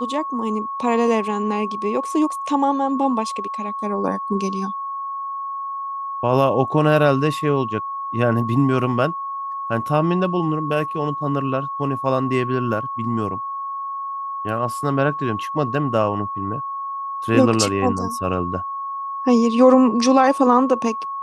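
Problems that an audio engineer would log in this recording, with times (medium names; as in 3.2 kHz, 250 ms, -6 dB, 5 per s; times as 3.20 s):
whine 1.1 kHz -25 dBFS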